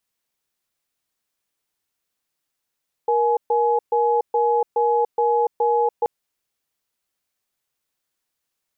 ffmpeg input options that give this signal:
ffmpeg -f lavfi -i "aevalsrc='0.119*(sin(2*PI*472*t)+sin(2*PI*843*t))*clip(min(mod(t,0.42),0.29-mod(t,0.42))/0.005,0,1)':duration=2.98:sample_rate=44100" out.wav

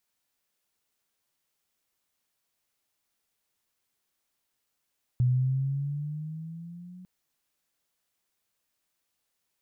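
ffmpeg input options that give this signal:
ffmpeg -f lavfi -i "aevalsrc='pow(10,(-19.5-24*t/1.85)/20)*sin(2*PI*123*1.85/(7*log(2)/12)*(exp(7*log(2)/12*t/1.85)-1))':duration=1.85:sample_rate=44100" out.wav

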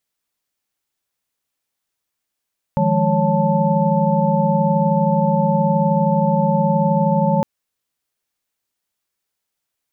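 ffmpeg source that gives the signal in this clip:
ffmpeg -f lavfi -i "aevalsrc='0.1*(sin(2*PI*155.56*t)+sin(2*PI*174.61*t)+sin(2*PI*207.65*t)+sin(2*PI*554.37*t)+sin(2*PI*880*t))':duration=4.66:sample_rate=44100" out.wav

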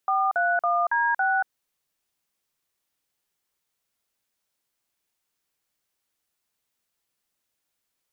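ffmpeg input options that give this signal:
ffmpeg -f lavfi -i "aevalsrc='0.075*clip(min(mod(t,0.278),0.233-mod(t,0.278))/0.002,0,1)*(eq(floor(t/0.278),0)*(sin(2*PI*770*mod(t,0.278))+sin(2*PI*1209*mod(t,0.278)))+eq(floor(t/0.278),1)*(sin(2*PI*697*mod(t,0.278))+sin(2*PI*1477*mod(t,0.278)))+eq(floor(t/0.278),2)*(sin(2*PI*697*mod(t,0.278))+sin(2*PI*1209*mod(t,0.278)))+eq(floor(t/0.278),3)*(sin(2*PI*941*mod(t,0.278))+sin(2*PI*1633*mod(t,0.278)))+eq(floor(t/0.278),4)*(sin(2*PI*770*mod(t,0.278))+sin(2*PI*1477*mod(t,0.278))))':duration=1.39:sample_rate=44100" out.wav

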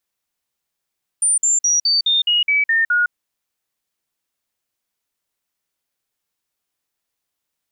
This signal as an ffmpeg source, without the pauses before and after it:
ffmpeg -f lavfi -i "aevalsrc='0.224*clip(min(mod(t,0.21),0.16-mod(t,0.21))/0.005,0,1)*sin(2*PI*9160*pow(2,-floor(t/0.21)/3)*mod(t,0.21))':duration=1.89:sample_rate=44100" out.wav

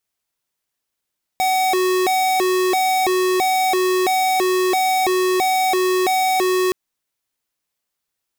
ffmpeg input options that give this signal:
ffmpeg -f lavfi -i "aevalsrc='0.133*(2*lt(mod((560.5*t+191.5/1.5*(0.5-abs(mod(1.5*t,1)-0.5))),1),0.5)-1)':duration=5.32:sample_rate=44100" out.wav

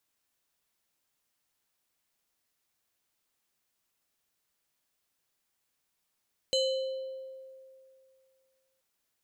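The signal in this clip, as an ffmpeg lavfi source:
ffmpeg -f lavfi -i "aevalsrc='0.0708*pow(10,-3*t/2.43)*sin(2*PI*528*t+1.2*pow(10,-3*t/1.52)*sin(2*PI*6.73*528*t))':duration=2.28:sample_rate=44100" out.wav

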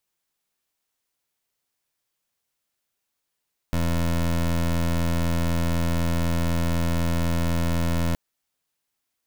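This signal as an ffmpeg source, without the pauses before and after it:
ffmpeg -f lavfi -i "aevalsrc='0.075*(2*lt(mod(84*t,1),0.21)-1)':duration=4.42:sample_rate=44100" out.wav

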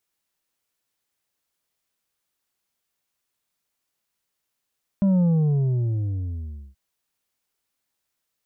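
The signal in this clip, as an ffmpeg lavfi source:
ffmpeg -f lavfi -i "aevalsrc='0.15*clip((1.73-t)/1.55,0,1)*tanh(1.88*sin(2*PI*200*1.73/log(65/200)*(exp(log(65/200)*t/1.73)-1)))/tanh(1.88)':duration=1.73:sample_rate=44100" out.wav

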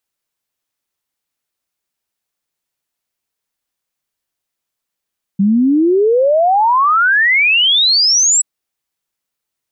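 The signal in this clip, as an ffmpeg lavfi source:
ffmpeg -f lavfi -i "aevalsrc='0.376*clip(min(t,3.03-t)/0.01,0,1)*sin(2*PI*190*3.03/log(7900/190)*(exp(log(7900/190)*t/3.03)-1))':duration=3.03:sample_rate=44100" out.wav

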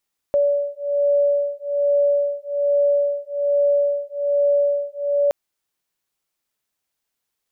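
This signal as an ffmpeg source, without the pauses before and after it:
ffmpeg -f lavfi -i "aevalsrc='0.106*(sin(2*PI*572*t)+sin(2*PI*573.2*t))':duration=4.97:sample_rate=44100" out.wav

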